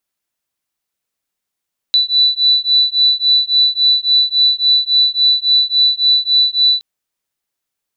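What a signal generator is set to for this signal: beating tones 3970 Hz, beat 3.6 Hz, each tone -13 dBFS 4.87 s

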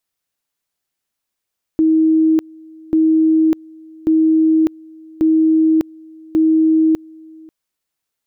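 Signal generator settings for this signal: two-level tone 318 Hz -9.5 dBFS, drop 26.5 dB, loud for 0.60 s, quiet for 0.54 s, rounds 5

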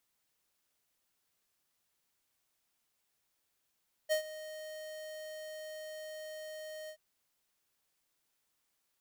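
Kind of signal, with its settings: ADSR square 621 Hz, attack 30 ms, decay 0.101 s, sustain -16.5 dB, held 2.80 s, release 77 ms -28.5 dBFS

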